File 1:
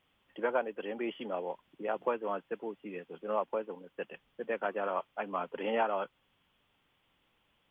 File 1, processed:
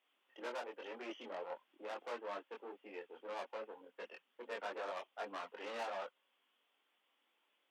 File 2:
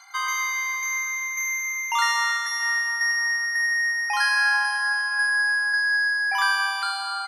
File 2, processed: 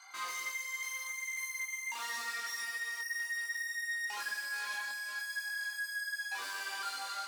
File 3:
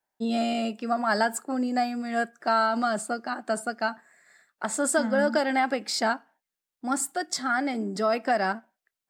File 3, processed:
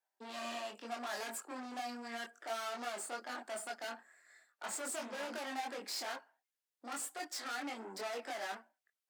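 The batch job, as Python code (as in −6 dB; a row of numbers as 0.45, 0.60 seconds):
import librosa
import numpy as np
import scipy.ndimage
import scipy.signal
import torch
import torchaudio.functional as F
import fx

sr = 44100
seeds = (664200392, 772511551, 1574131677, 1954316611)

y = fx.tube_stage(x, sr, drive_db=36.0, bias=0.65)
y = scipy.signal.sosfilt(scipy.signal.bessel(8, 410.0, 'highpass', norm='mag', fs=sr, output='sos'), y)
y = fx.chorus_voices(y, sr, voices=4, hz=0.79, base_ms=23, depth_ms=2.2, mix_pct=45)
y = F.gain(torch.from_numpy(y), 1.0).numpy()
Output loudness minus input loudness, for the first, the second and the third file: −10.5, −14.5, −15.0 LU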